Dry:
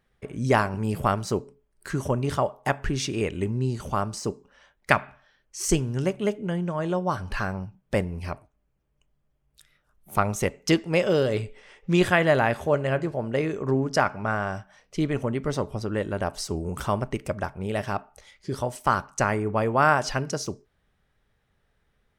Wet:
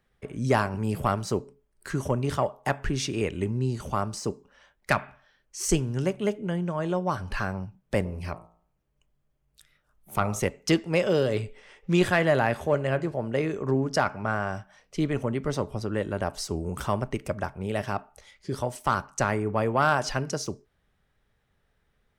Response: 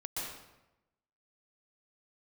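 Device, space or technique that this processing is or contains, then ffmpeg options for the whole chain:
one-band saturation: -filter_complex "[0:a]acrossover=split=250|4000[link_01][link_02][link_03];[link_02]asoftclip=type=tanh:threshold=-10.5dB[link_04];[link_01][link_04][link_03]amix=inputs=3:normalize=0,asplit=3[link_05][link_06][link_07];[link_05]afade=type=out:start_time=8.04:duration=0.02[link_08];[link_06]bandreject=frequency=56.73:width_type=h:width=4,bandreject=frequency=113.46:width_type=h:width=4,bandreject=frequency=170.19:width_type=h:width=4,bandreject=frequency=226.92:width_type=h:width=4,bandreject=frequency=283.65:width_type=h:width=4,bandreject=frequency=340.38:width_type=h:width=4,bandreject=frequency=397.11:width_type=h:width=4,bandreject=frequency=453.84:width_type=h:width=4,bandreject=frequency=510.57:width_type=h:width=4,bandreject=frequency=567.3:width_type=h:width=4,bandreject=frequency=624.03:width_type=h:width=4,bandreject=frequency=680.76:width_type=h:width=4,bandreject=frequency=737.49:width_type=h:width=4,bandreject=frequency=794.22:width_type=h:width=4,bandreject=frequency=850.95:width_type=h:width=4,bandreject=frequency=907.68:width_type=h:width=4,bandreject=frequency=964.41:width_type=h:width=4,bandreject=frequency=1021.14:width_type=h:width=4,bandreject=frequency=1077.87:width_type=h:width=4,bandreject=frequency=1134.6:width_type=h:width=4,bandreject=frequency=1191.33:width_type=h:width=4,bandreject=frequency=1248.06:width_type=h:width=4,bandreject=frequency=1304.79:width_type=h:width=4,afade=type=in:start_time=8.04:duration=0.02,afade=type=out:start_time=10.39:duration=0.02[link_09];[link_07]afade=type=in:start_time=10.39:duration=0.02[link_10];[link_08][link_09][link_10]amix=inputs=3:normalize=0,volume=-1dB"

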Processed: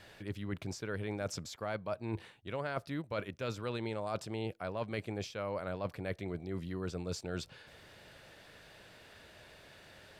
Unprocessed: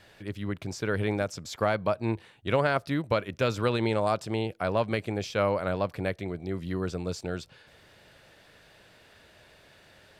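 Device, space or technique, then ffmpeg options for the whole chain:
compression on the reversed sound: -af "areverse,acompressor=threshold=-34dB:ratio=10,areverse"

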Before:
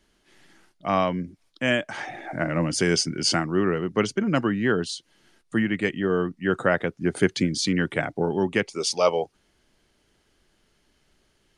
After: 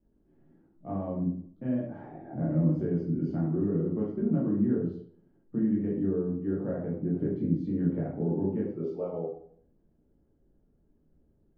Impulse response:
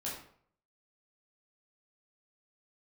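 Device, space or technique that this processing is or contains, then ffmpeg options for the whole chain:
television next door: -filter_complex "[0:a]acompressor=threshold=-23dB:ratio=6,lowpass=380[link_01];[1:a]atrim=start_sample=2205[link_02];[link_01][link_02]afir=irnorm=-1:irlink=0"

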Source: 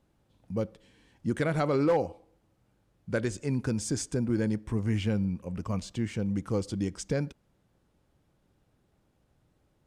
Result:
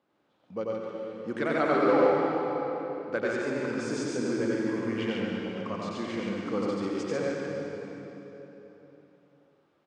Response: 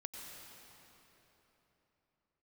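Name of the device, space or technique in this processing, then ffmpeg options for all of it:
station announcement: -filter_complex "[0:a]highpass=310,lowpass=4000,equalizer=frequency=1200:width_type=o:width=0.4:gain=4,aecho=1:1:90.38|142.9:0.794|0.708[link_01];[1:a]atrim=start_sample=2205[link_02];[link_01][link_02]afir=irnorm=-1:irlink=0,volume=4.5dB"

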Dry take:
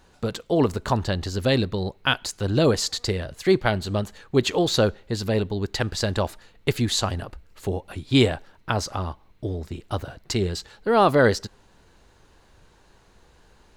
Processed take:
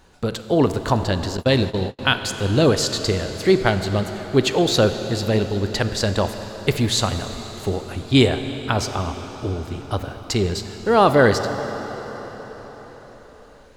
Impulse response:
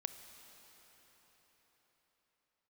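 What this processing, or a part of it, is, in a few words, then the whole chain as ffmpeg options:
cathedral: -filter_complex "[1:a]atrim=start_sample=2205[link_01];[0:a][link_01]afir=irnorm=-1:irlink=0,asettb=1/sr,asplit=3[link_02][link_03][link_04];[link_02]atrim=end=1.374[link_05];[link_03]atrim=start=1.37:end=1.99,asetpts=PTS-STARTPTS,afade=type=in:duration=0.004:curve=qsin,afade=type=out:start_time=0.616:duration=0.004:curve=qsin,agate=range=-38dB:threshold=-28dB:ratio=16:detection=peak[link_06];[link_04]atrim=start=1.986[link_07];[link_05][link_06]acrossfade=duration=0.004:curve1=hsin:curve2=qsin[link_08];[link_08][link_07]acrossfade=duration=0.004:curve1=qsin:curve2=hsin,volume=5.5dB"

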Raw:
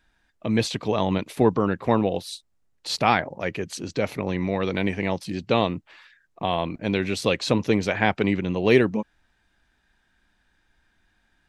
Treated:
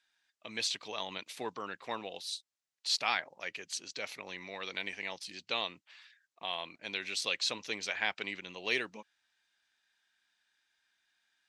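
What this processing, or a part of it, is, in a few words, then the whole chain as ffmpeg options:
piezo pickup straight into a mixer: -af "lowpass=5500,aderivative,volume=3.5dB"

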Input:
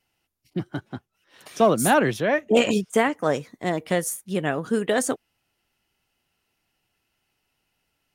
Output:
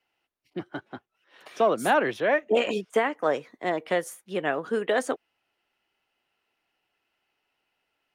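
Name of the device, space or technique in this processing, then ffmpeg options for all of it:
DJ mixer with the lows and highs turned down: -filter_complex "[0:a]acrossover=split=300 3800:gain=0.178 1 0.224[link_01][link_02][link_03];[link_01][link_02][link_03]amix=inputs=3:normalize=0,alimiter=limit=-12.5dB:level=0:latency=1:release=255"

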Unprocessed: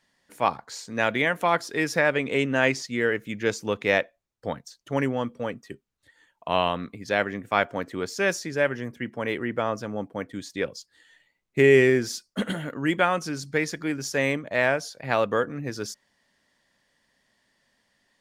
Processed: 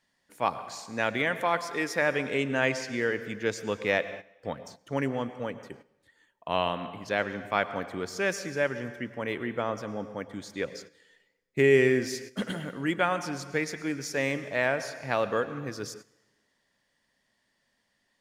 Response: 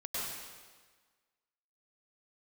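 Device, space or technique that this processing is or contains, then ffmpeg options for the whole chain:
keyed gated reverb: -filter_complex "[0:a]asettb=1/sr,asplit=3[link_01][link_02][link_03];[link_01]atrim=end=1.424[link_04];[link_02]atrim=start=1.42:end=2.02,asetpts=PTS-STARTPTS,afade=type=in:duration=0.004:curve=qsin,afade=type=out:start_time=0.596:duration=0.004:curve=qsin,equalizer=frequency=120:width=1.2:gain=-8.5[link_05];[link_03]atrim=start=2.016[link_06];[link_04][link_05]acrossfade=duration=0.004:curve1=hsin:curve2=qsin[link_07];[link_07][link_06]acrossfade=duration=0.004:curve1=qsin:curve2=hsin,asplit=3[link_08][link_09][link_10];[1:a]atrim=start_sample=2205[link_11];[link_09][link_11]afir=irnorm=-1:irlink=0[link_12];[link_10]apad=whole_len=802702[link_13];[link_12][link_13]sidechaingate=range=-13dB:threshold=-47dB:ratio=16:detection=peak,volume=-14dB[link_14];[link_08][link_14]amix=inputs=2:normalize=0,volume=-5dB"

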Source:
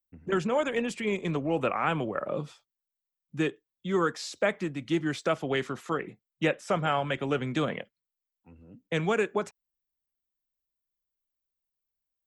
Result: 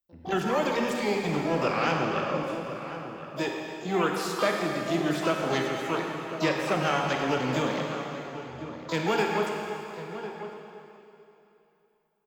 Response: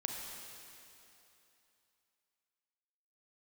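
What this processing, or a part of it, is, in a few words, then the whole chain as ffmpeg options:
shimmer-style reverb: -filter_complex "[0:a]asettb=1/sr,asplit=3[link_01][link_02][link_03];[link_01]atrim=end=2.434[link_04];[link_02]atrim=start=2.43:end=3.48,asetpts=PTS-STARTPTS,afade=type=in:duration=0.004:curve=qsin,afade=type=out:start_time=1.046:duration=0.004:curve=qsin,highpass=frequency=270:poles=1[link_05];[link_03]atrim=start=3.476[link_06];[link_04][link_05]acrossfade=duration=0.004:curve1=hsin:curve2=qsin[link_07];[link_07][link_06]acrossfade=duration=0.004:curve1=qsin:curve2=hsin,asplit=2[link_08][link_09];[link_09]adelay=1050,volume=-11dB,highshelf=frequency=4000:gain=-23.6[link_10];[link_08][link_10]amix=inputs=2:normalize=0,asplit=2[link_11][link_12];[link_12]asetrate=88200,aresample=44100,atempo=0.5,volume=-7dB[link_13];[link_11][link_13]amix=inputs=2:normalize=0[link_14];[1:a]atrim=start_sample=2205[link_15];[link_14][link_15]afir=irnorm=-1:irlink=0"

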